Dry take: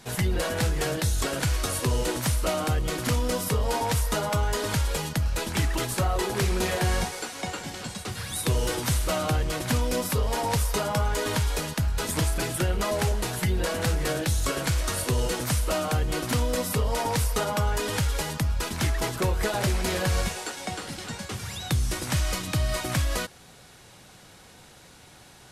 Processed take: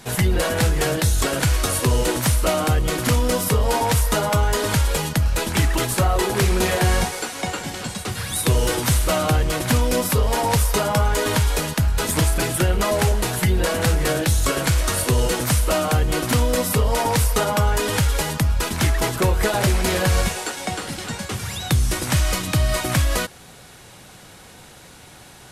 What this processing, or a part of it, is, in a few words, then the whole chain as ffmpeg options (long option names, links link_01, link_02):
exciter from parts: -filter_complex "[0:a]asplit=2[link_01][link_02];[link_02]highpass=4600,asoftclip=type=tanh:threshold=-31dB,highpass=4000,volume=-11dB[link_03];[link_01][link_03]amix=inputs=2:normalize=0,volume=6.5dB"